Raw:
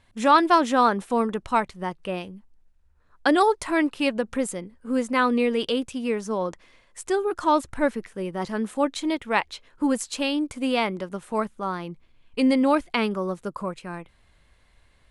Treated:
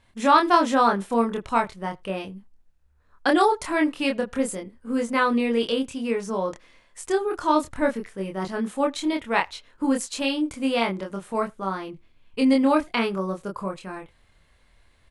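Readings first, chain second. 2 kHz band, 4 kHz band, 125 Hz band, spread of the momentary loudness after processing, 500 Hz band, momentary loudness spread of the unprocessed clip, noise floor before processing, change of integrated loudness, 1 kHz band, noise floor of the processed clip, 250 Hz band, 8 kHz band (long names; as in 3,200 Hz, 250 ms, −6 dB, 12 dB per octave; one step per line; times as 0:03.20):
+0.5 dB, +0.5 dB, 0.0 dB, 13 LU, 0.0 dB, 13 LU, −60 dBFS, 0.0 dB, +0.5 dB, −61 dBFS, +0.5 dB, +0.5 dB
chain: double-tracking delay 26 ms −3 dB
far-end echo of a speakerphone 80 ms, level −28 dB
level −1.5 dB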